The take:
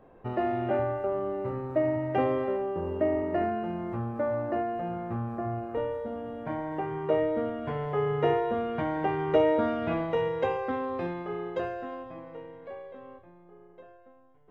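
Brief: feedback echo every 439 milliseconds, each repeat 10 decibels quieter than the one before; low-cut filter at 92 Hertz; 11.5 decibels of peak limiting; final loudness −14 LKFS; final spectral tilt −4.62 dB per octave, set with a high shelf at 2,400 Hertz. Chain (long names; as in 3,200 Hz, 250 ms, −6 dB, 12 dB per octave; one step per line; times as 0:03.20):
high-pass filter 92 Hz
high-shelf EQ 2,400 Hz −5.5 dB
brickwall limiter −22.5 dBFS
repeating echo 439 ms, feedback 32%, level −10 dB
level +18 dB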